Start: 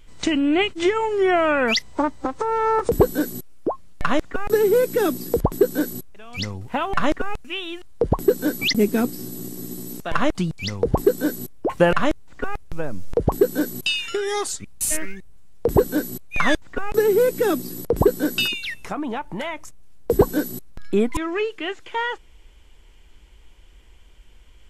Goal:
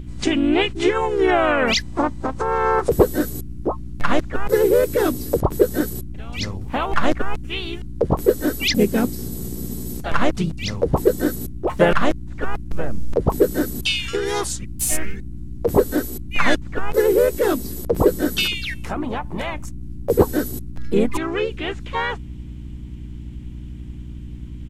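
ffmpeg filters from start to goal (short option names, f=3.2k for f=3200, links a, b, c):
-filter_complex "[0:a]aeval=exprs='val(0)+0.0224*(sin(2*PI*60*n/s)+sin(2*PI*2*60*n/s)/2+sin(2*PI*3*60*n/s)/3+sin(2*PI*4*60*n/s)/4+sin(2*PI*5*60*n/s)/5)':c=same,asplit=3[a][b][c];[b]asetrate=37084,aresample=44100,atempo=1.18921,volume=-9dB[d];[c]asetrate=52444,aresample=44100,atempo=0.840896,volume=-7dB[e];[a][d][e]amix=inputs=3:normalize=0"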